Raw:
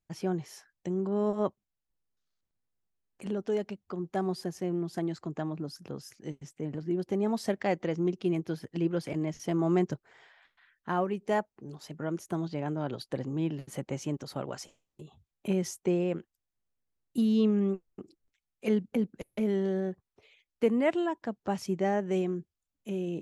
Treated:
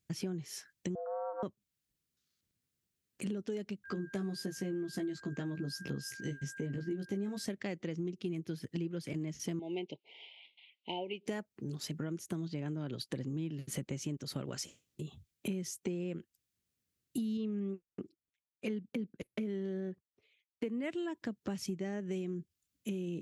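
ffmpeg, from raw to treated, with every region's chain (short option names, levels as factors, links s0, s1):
-filter_complex "[0:a]asettb=1/sr,asplit=3[s0][s1][s2];[s0]atrim=end=0.954[s3];[s1]atrim=start=0.95:end=1.43,asetpts=PTS-STARTPTS,afade=t=in:d=0.004:c=qsin,afade=t=out:st=0.476:d=0.004:c=qsin,lowpass=f=1000:w=0.5412,lowpass=f=1000:w=1.3066,afreqshift=310[s4];[s2]atrim=start=1.426[s5];[s3][s4]acrossfade=d=0.004:c1=hsin:c2=qsin[s6];[s6][s5]acrossfade=d=0.004:c1=qsin:c2=hsin,asettb=1/sr,asplit=3[s7][s8][s9];[s7]atrim=end=3.844[s10];[s8]atrim=start=3.84:end=7.45,asetpts=PTS-STARTPTS,afade=t=in:d=0.004:c=qsin,afade=t=out:st=3.606:d=0.004:c=qsin,aeval=exprs='val(0)+0.00224*sin(2*PI*1600*n/s)':c=same,asplit=2[s11][s12];[s12]adelay=15,volume=0.708[s13];[s11][s13]amix=inputs=2:normalize=0,atrim=end_sample=159201[s14];[s9]atrim=start=7.446[s15];[s10][s14]acrossfade=d=0.004:c1=hsin:c2=qsin[s16];[s16][s15]acrossfade=d=0.004:c1=qsin:c2=hsin,asettb=1/sr,asplit=3[s17][s18][s19];[s17]atrim=end=9.594[s20];[s18]atrim=start=9.59:end=11.26,asetpts=PTS-STARTPTS,afade=t=in:d=0.004:c=qsin,afade=t=out:st=1.666:d=0.004:c=qsin,asuperstop=centerf=1400:order=20:qfactor=1.2,highpass=470,equalizer=f=1100:t=q:w=4:g=10,equalizer=f=1600:t=q:w=4:g=4,equalizer=f=2900:t=q:w=4:g=10,lowpass=f=3800:w=0.5412,lowpass=f=3800:w=1.3066[s21];[s19]atrim=start=11.256[s22];[s20][s21]acrossfade=d=0.004:c1=hsin:c2=qsin[s23];[s23][s22]acrossfade=d=0.004:c1=qsin:c2=hsin,asettb=1/sr,asplit=3[s24][s25][s26];[s24]atrim=end=17.374[s27];[s25]atrim=start=17.37:end=20.84,asetpts=PTS-STARTPTS,afade=t=in:d=0.004:c=qsin,afade=t=out:st=3.466:d=0.004:c=qsin,lowpass=f=2800:p=1,agate=range=0.2:threshold=0.002:ratio=16:release=100:detection=peak,equalizer=f=81:t=o:w=2.8:g=-5.5[s28];[s26]atrim=start=20.836[s29];[s27][s28]acrossfade=d=0.004:c1=hsin:c2=qsin[s30];[s30][s29]acrossfade=d=0.004:c1=qsin:c2=hsin,highpass=76,equalizer=f=820:w=0.92:g=-14.5,acompressor=threshold=0.00631:ratio=6,volume=2.66"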